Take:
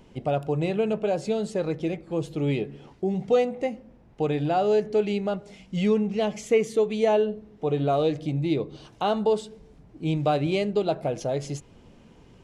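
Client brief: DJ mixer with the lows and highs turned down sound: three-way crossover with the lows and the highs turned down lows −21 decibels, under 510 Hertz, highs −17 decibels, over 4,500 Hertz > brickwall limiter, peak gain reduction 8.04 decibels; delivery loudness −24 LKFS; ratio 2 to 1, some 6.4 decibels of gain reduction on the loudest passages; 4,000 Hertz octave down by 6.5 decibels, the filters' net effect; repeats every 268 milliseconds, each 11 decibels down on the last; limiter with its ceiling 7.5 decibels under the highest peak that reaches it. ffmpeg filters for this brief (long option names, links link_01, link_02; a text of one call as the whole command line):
ffmpeg -i in.wav -filter_complex "[0:a]equalizer=frequency=4000:width_type=o:gain=-6.5,acompressor=threshold=-29dB:ratio=2,alimiter=limit=-24dB:level=0:latency=1,acrossover=split=510 4500:gain=0.0891 1 0.141[link_01][link_02][link_03];[link_01][link_02][link_03]amix=inputs=3:normalize=0,aecho=1:1:268|536|804:0.282|0.0789|0.0221,volume=19dB,alimiter=limit=-13.5dB:level=0:latency=1" out.wav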